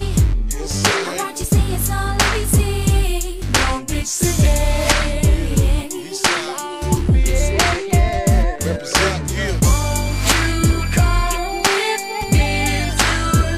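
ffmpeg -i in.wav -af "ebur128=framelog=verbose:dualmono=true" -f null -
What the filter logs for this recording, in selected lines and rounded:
Integrated loudness:
  I:         -14.7 LUFS
  Threshold: -24.7 LUFS
Loudness range:
  LRA:         0.9 LU
  Threshold: -34.7 LUFS
  LRA low:   -15.1 LUFS
  LRA high:  -14.2 LUFS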